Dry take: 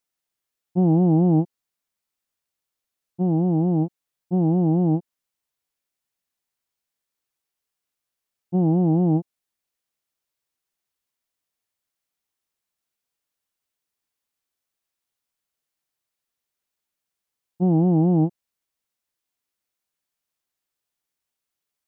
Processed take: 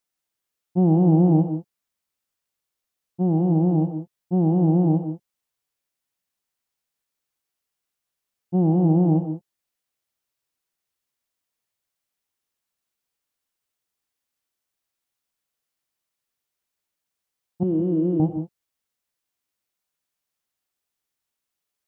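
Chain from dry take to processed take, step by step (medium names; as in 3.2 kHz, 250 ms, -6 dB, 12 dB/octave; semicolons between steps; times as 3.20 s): 17.63–18.20 s: static phaser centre 330 Hz, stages 4; gated-style reverb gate 200 ms rising, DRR 8 dB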